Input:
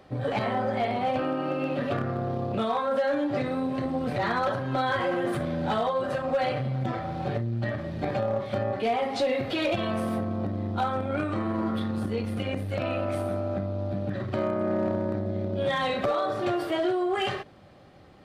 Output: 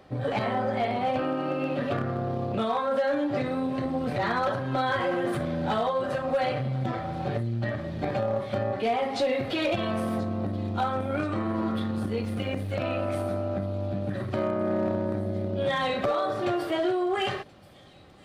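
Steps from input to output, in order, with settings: feedback echo behind a high-pass 1029 ms, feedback 77%, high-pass 4.4 kHz, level -16 dB; 12.22–12.77 s: crackle 270 per s -49 dBFS

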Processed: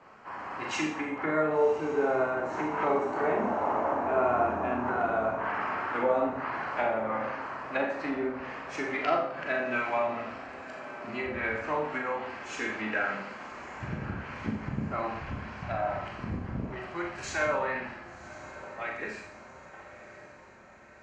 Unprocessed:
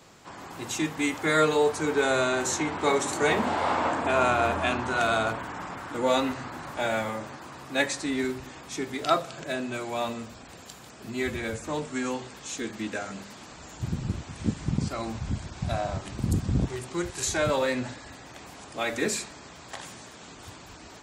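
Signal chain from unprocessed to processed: fade out at the end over 6.88 s; level-controlled noise filter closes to 1.2 kHz, open at -21 dBFS; peaking EQ 3.6 kHz -13.5 dB 0.25 oct; low-pass that closes with the level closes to 630 Hz, closed at -24.5 dBFS; tilt shelf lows -9 dB, about 640 Hz; echo that smears into a reverb 1097 ms, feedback 61%, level -15 dB; Schroeder reverb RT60 0.57 s, combs from 29 ms, DRR 1 dB

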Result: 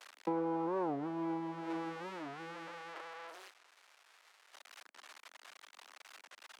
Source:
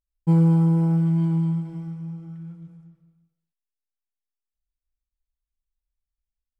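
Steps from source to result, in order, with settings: zero-crossing glitches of -25 dBFS; low-pass 1.3 kHz 12 dB/octave; compression 6:1, threshold -28 dBFS, peak gain reduction 13 dB; Bessel high-pass 500 Hz, order 8; warped record 45 rpm, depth 250 cents; trim +12 dB

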